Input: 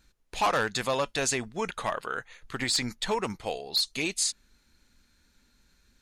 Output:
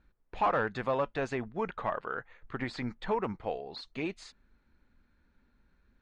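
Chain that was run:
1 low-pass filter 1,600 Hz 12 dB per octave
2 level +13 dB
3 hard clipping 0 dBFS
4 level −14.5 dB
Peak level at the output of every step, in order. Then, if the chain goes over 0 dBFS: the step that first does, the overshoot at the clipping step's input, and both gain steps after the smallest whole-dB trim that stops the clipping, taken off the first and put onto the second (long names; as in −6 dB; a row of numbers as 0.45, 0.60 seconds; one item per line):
−18.0, −5.0, −5.0, −19.5 dBFS
no step passes full scale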